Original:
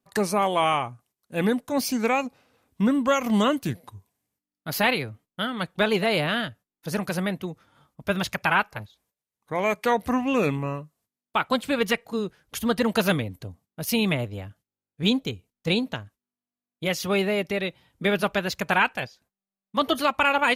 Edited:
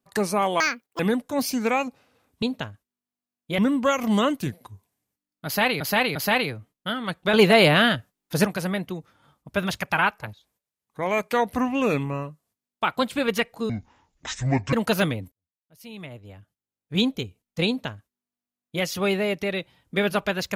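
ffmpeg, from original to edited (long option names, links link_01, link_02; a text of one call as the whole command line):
ffmpeg -i in.wav -filter_complex "[0:a]asplit=12[link_01][link_02][link_03][link_04][link_05][link_06][link_07][link_08][link_09][link_10][link_11][link_12];[link_01]atrim=end=0.604[link_13];[link_02]atrim=start=0.6:end=1.38,asetpts=PTS-STARTPTS,asetrate=87318,aresample=44100[link_14];[link_03]atrim=start=1.376:end=2.812[link_15];[link_04]atrim=start=15.748:end=16.912[link_16];[link_05]atrim=start=2.808:end=5.032[link_17];[link_06]atrim=start=4.678:end=5.032[link_18];[link_07]atrim=start=4.678:end=5.862[link_19];[link_08]atrim=start=5.858:end=6.982,asetpts=PTS-STARTPTS,volume=7.5dB[link_20];[link_09]atrim=start=6.978:end=12.224[link_21];[link_10]atrim=start=12.22:end=12.81,asetpts=PTS-STARTPTS,asetrate=25137,aresample=44100,atrim=end_sample=45647,asetpts=PTS-STARTPTS[link_22];[link_11]atrim=start=12.806:end=13.4,asetpts=PTS-STARTPTS,afade=type=out:start_time=0.59:duration=0.004:curve=hsin[link_23];[link_12]atrim=start=13.4,asetpts=PTS-STARTPTS,afade=type=in:duration=1.66:curve=qua[link_24];[link_13][link_14]acrossfade=duration=0.004:curve1=hsin:curve2=hsin[link_25];[link_25][link_15]acrossfade=duration=0.004:curve1=hsin:curve2=hsin[link_26];[link_26][link_16]acrossfade=duration=0.004:curve1=hsin:curve2=hsin[link_27];[link_27][link_17]acrossfade=duration=0.004:curve1=hsin:curve2=hsin[link_28];[link_28][link_18]acrossfade=duration=0.004:curve1=hsin:curve2=hsin[link_29];[link_29][link_19]acrossfade=duration=0.004:curve1=hsin:curve2=hsin[link_30];[link_30][link_20]acrossfade=duration=0.004:curve1=hsin:curve2=hsin[link_31];[link_31][link_21]acrossfade=duration=0.004:curve1=hsin:curve2=hsin[link_32];[link_32][link_22]acrossfade=duration=0.004:curve1=hsin:curve2=hsin[link_33];[link_23][link_24]concat=n=2:v=0:a=1[link_34];[link_33][link_34]acrossfade=duration=0.004:curve1=hsin:curve2=hsin" out.wav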